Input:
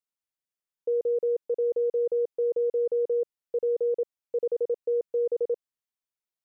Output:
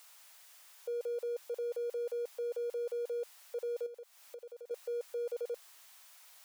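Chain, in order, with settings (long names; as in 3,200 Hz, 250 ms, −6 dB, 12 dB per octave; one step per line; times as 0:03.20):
converter with a step at zero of −49 dBFS
high-pass filter 650 Hz 24 dB per octave
0:03.86–0:04.71: downward compressor 12 to 1, threshold −46 dBFS, peak gain reduction 11.5 dB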